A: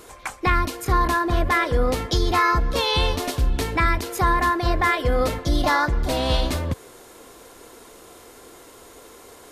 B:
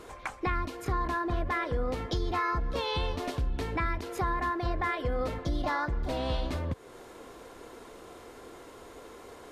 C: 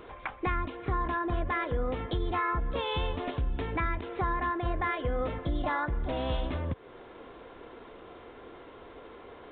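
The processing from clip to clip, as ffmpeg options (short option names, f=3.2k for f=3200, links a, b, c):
-af "lowpass=f=2.5k:p=1,acompressor=threshold=-33dB:ratio=2,volume=-1dB"
-af "aresample=8000,aresample=44100"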